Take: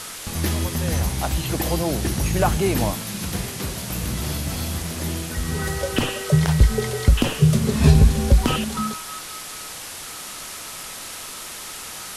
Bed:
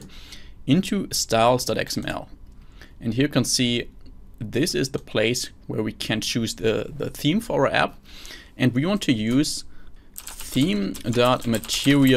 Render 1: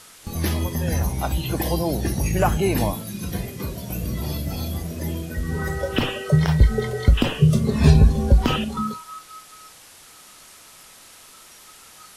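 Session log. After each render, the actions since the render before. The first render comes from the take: noise print and reduce 12 dB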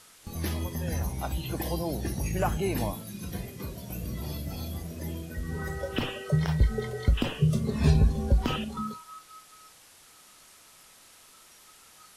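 gain -8 dB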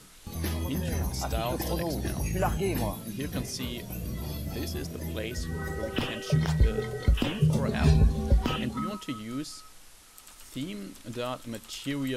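add bed -15 dB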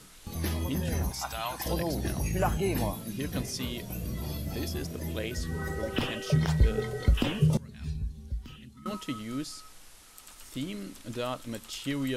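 1.12–1.66 resonant low shelf 660 Hz -12 dB, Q 1.5; 7.57–8.86 passive tone stack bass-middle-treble 6-0-2

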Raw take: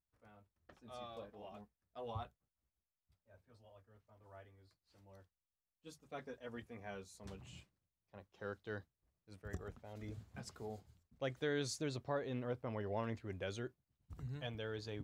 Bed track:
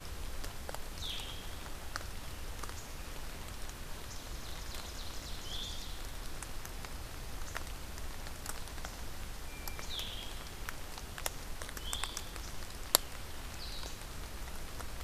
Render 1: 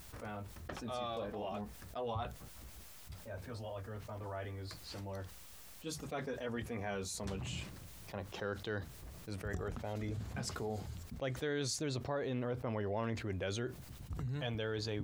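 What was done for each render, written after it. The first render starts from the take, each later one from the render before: fast leveller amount 70%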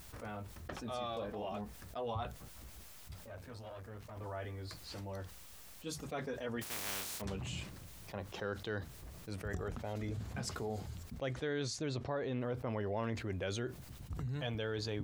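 3.26–4.17 tube stage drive 41 dB, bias 0.65; 6.61–7.2 spectral contrast lowered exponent 0.15; 11.33–12.41 air absorption 58 m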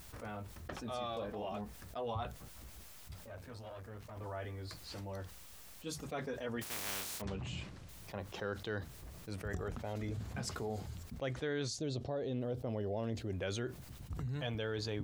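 7.22–7.89 air absorption 72 m; 11.69–13.33 band shelf 1500 Hz -10 dB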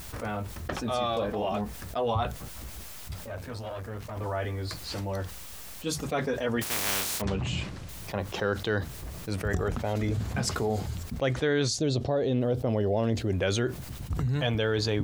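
gain +11.5 dB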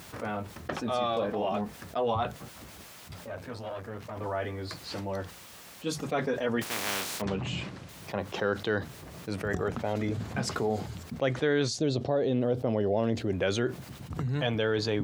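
HPF 130 Hz 12 dB/oct; high shelf 5700 Hz -8 dB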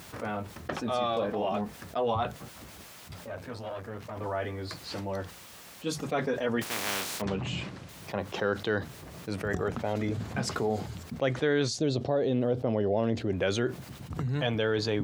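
12.5–13.37 high shelf 8200 Hz -8.5 dB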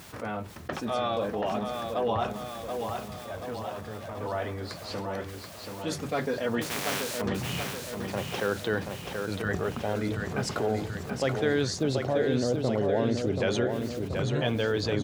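feedback echo 0.731 s, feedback 57%, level -5.5 dB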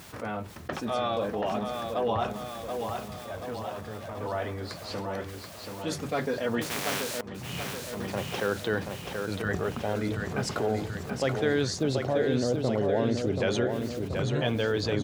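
7.21–7.73 fade in, from -17.5 dB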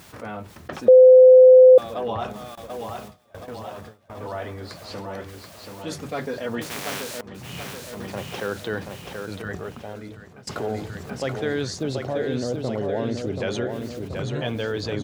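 0.88–1.78 bleep 512 Hz -6 dBFS; 2.55–4.1 gate with hold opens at -27 dBFS, closes at -32 dBFS; 9.12–10.47 fade out, to -20.5 dB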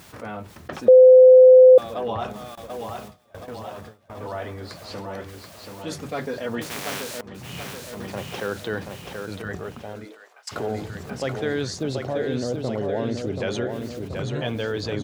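10.04–10.51 HPF 270 Hz -> 1000 Hz 24 dB/oct

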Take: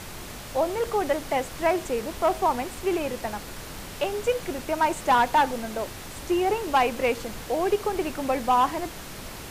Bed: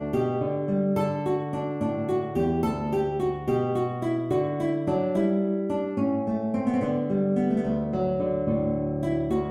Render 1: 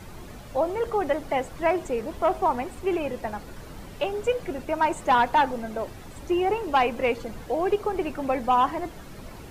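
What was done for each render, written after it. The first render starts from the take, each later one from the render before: denoiser 11 dB, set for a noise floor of -39 dBFS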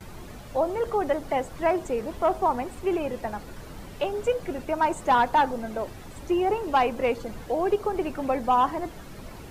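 gate with hold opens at -38 dBFS; dynamic EQ 2400 Hz, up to -4 dB, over -40 dBFS, Q 1.4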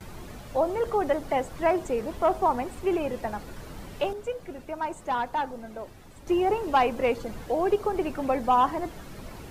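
4.13–6.27 gain -7.5 dB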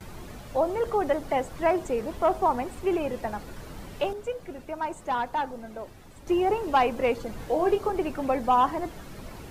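7.37–7.9 doubler 23 ms -6 dB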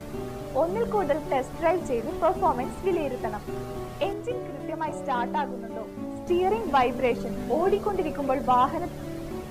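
add bed -10 dB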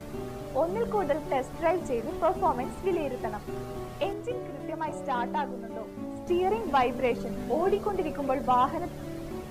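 gain -2.5 dB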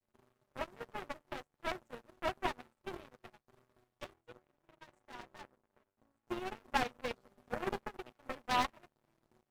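minimum comb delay 8.2 ms; power-law curve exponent 3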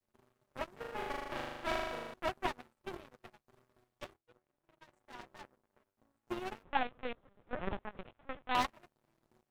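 0.73–2.14 flutter echo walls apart 6.7 m, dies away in 1.4 s; 4.17–5.24 fade in, from -16 dB; 6.63–8.55 LPC vocoder at 8 kHz pitch kept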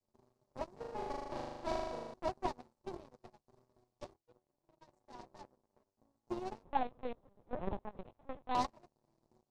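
LPF 6800 Hz 12 dB/oct; band shelf 2100 Hz -11.5 dB

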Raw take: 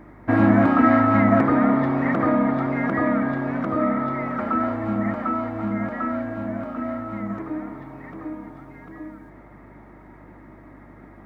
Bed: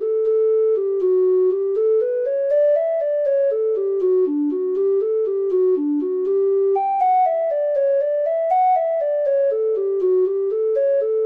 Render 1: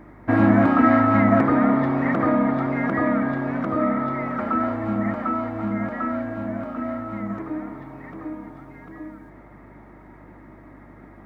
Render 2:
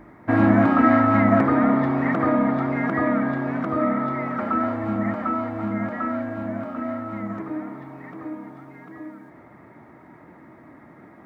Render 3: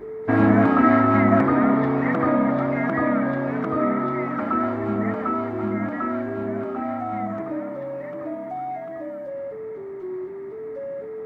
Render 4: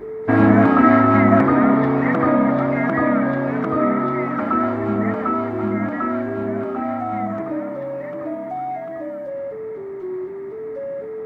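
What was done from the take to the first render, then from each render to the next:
nothing audible
de-hum 50 Hz, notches 11
add bed -14 dB
gain +3.5 dB

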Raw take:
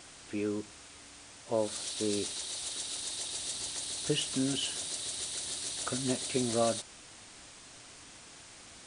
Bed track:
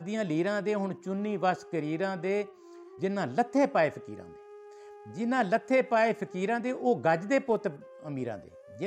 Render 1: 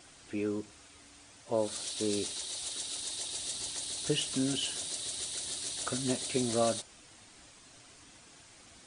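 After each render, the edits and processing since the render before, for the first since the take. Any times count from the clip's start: denoiser 6 dB, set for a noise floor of -52 dBFS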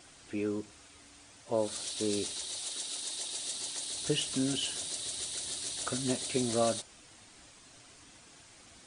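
2.6–3.93 Bessel high-pass 180 Hz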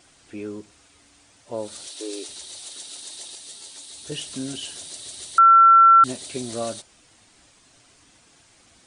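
1.87–2.29 brick-wall FIR high-pass 260 Hz; 3.35–4.12 ensemble effect; 5.38–6.04 bleep 1350 Hz -8.5 dBFS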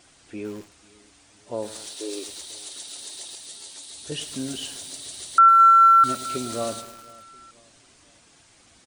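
feedback echo 0.49 s, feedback 48%, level -24 dB; lo-fi delay 0.107 s, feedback 80%, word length 6-bit, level -12 dB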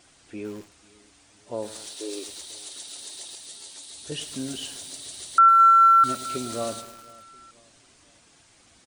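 gain -1.5 dB

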